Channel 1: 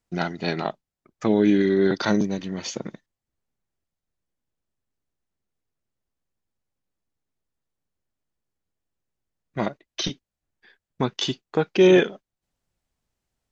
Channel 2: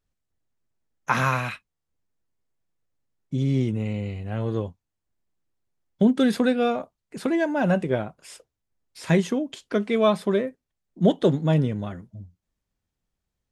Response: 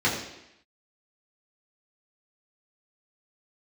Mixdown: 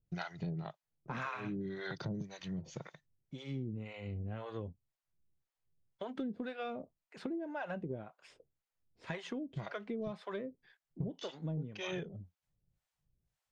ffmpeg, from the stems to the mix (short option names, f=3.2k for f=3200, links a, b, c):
-filter_complex "[0:a]lowshelf=f=190:t=q:w=3:g=7.5,volume=-5dB[a];[1:a]lowpass=3.8k,acontrast=63,volume=-10.5dB,asplit=2[b][c];[c]apad=whole_len=596049[d];[a][d]sidechaincompress=threshold=-26dB:ratio=8:attack=16:release=945[e];[e][b]amix=inputs=2:normalize=0,acrossover=split=570[f][g];[f]aeval=exprs='val(0)*(1-1/2+1/2*cos(2*PI*1.9*n/s))':c=same[h];[g]aeval=exprs='val(0)*(1-1/2-1/2*cos(2*PI*1.9*n/s))':c=same[i];[h][i]amix=inputs=2:normalize=0,acompressor=threshold=-37dB:ratio=6"